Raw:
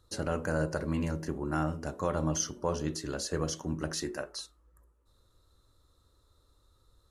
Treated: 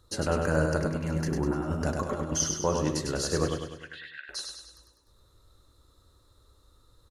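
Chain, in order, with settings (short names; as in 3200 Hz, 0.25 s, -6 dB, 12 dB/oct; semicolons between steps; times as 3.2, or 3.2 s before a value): 0.84–2.32 negative-ratio compressor -34 dBFS, ratio -0.5; 3.48–4.29 elliptic band-pass 1600–3500 Hz, stop band 40 dB; feedback echo 0.1 s, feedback 51%, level -4.5 dB; gain +4 dB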